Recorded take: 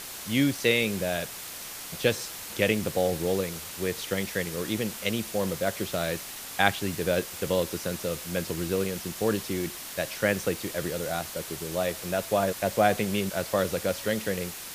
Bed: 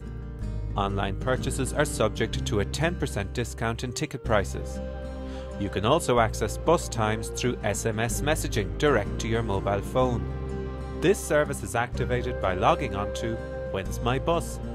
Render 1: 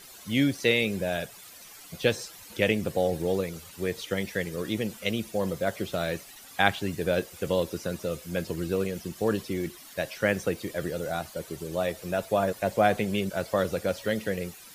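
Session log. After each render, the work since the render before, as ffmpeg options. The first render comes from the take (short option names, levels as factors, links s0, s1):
-af "afftdn=nr=13:nf=-40"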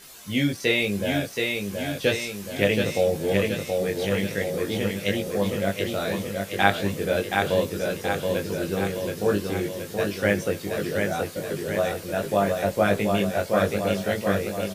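-filter_complex "[0:a]asplit=2[s0][s1];[s1]adelay=20,volume=0.794[s2];[s0][s2]amix=inputs=2:normalize=0,aecho=1:1:725|1450|2175|2900|3625|4350|5075|5800:0.631|0.366|0.212|0.123|0.0714|0.0414|0.024|0.0139"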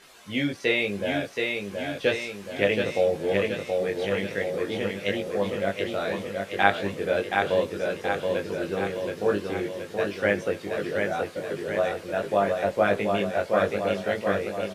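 -af "lowpass=11000,bass=f=250:g=-8,treble=f=4000:g=-10"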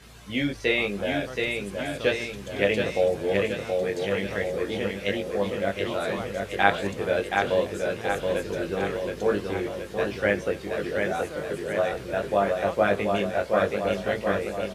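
-filter_complex "[1:a]volume=0.188[s0];[0:a][s0]amix=inputs=2:normalize=0"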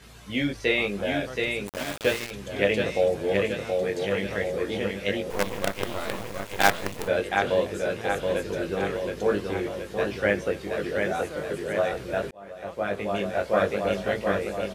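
-filter_complex "[0:a]asettb=1/sr,asplit=3[s0][s1][s2];[s0]atrim=end=1.674[s3];[s1]atrim=start=1.67:end=2.31,asetpts=PTS-STARTPTS,afade=t=in:d=0.004:c=qsin,afade=t=out:st=0.636:d=0.004:c=qsin,aeval=exprs='val(0)*gte(abs(val(0)),0.0376)':c=same[s4];[s2]atrim=start=2.306[s5];[s3][s4]acrossfade=d=0.004:c1=hsin:c2=qsin[s6];[s6][s5]acrossfade=d=0.004:c1=qsin:c2=hsin,asettb=1/sr,asplit=3[s7][s8][s9];[s7]atrim=end=5.304[s10];[s8]atrim=start=5.3:end=7.08,asetpts=PTS-STARTPTS,afade=t=in:d=0.004:c=qsin,afade=t=out:st=1.776:d=0.004:c=qsin,acrusher=bits=4:dc=4:mix=0:aa=0.000001[s11];[s9]atrim=start=7.076[s12];[s10][s11]acrossfade=d=0.004:c1=hsin:c2=qsin[s13];[s13][s12]acrossfade=d=0.004:c1=qsin:c2=hsin,asplit=2[s14][s15];[s14]atrim=end=12.31,asetpts=PTS-STARTPTS,afade=t=out:st=12.306:d=0.004:c=hsin[s16];[s15]atrim=start=12.31,asetpts=PTS-STARTPTS,afade=t=in:d=1.17[s17];[s16][s17]concat=n=2:v=0:a=1"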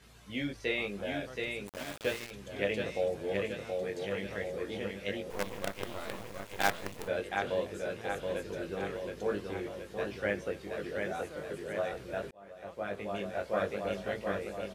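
-af "volume=0.355"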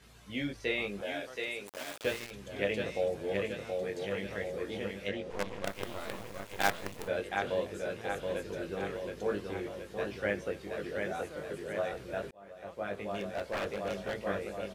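-filter_complex "[0:a]asettb=1/sr,asplit=3[s0][s1][s2];[s0]atrim=end=1.014[s3];[s1]atrim=start=1.01:end=2.04,asetpts=PTS-STARTPTS,afade=t=in:d=0.004:c=qsin,afade=t=out:st=1.026:d=0.004:c=qsin,bass=f=250:g=-13,treble=f=4000:g=2[s4];[s2]atrim=start=2.036[s5];[s3][s4]acrossfade=d=0.004:c1=hsin:c2=qsin[s6];[s6][s5]acrossfade=d=0.004:c1=qsin:c2=hsin,asplit=3[s7][s8][s9];[s7]afade=t=out:st=5.08:d=0.02[s10];[s8]adynamicsmooth=sensitivity=4.5:basefreq=6300,afade=t=in:st=5.08:d=0.02,afade=t=out:st=5.64:d=0.02[s11];[s9]afade=t=in:st=5.64:d=0.02[s12];[s10][s11][s12]amix=inputs=3:normalize=0,asettb=1/sr,asplit=3[s13][s14][s15];[s13]atrim=end=13.104[s16];[s14]atrim=start=13.1:end=14.17,asetpts=PTS-STARTPTS,afade=t=in:d=0.004:c=qsin,afade=t=out:st=1.066:d=0.004:c=qsin,aeval=exprs='0.0376*(abs(mod(val(0)/0.0376+3,4)-2)-1)':c=same[s17];[s15]atrim=start=14.166[s18];[s16][s17]acrossfade=d=0.004:c1=hsin:c2=qsin[s19];[s19][s18]acrossfade=d=0.004:c1=qsin:c2=hsin"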